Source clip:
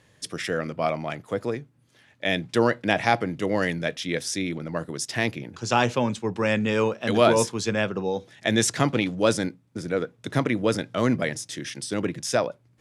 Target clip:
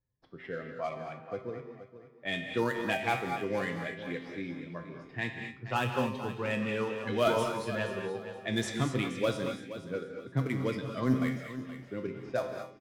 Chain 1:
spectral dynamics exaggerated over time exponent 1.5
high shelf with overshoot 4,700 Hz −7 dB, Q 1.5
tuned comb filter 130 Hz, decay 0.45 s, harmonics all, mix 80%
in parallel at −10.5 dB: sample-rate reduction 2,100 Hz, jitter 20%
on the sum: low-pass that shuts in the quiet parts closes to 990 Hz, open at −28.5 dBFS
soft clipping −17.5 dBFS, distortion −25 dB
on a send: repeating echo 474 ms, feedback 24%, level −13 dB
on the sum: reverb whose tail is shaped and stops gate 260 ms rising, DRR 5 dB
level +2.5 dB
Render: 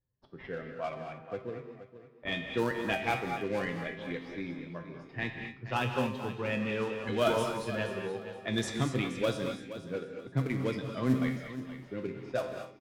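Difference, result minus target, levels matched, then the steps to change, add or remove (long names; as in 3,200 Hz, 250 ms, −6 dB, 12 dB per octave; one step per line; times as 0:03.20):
sample-rate reduction: distortion +6 dB
change: sample-rate reduction 5,500 Hz, jitter 20%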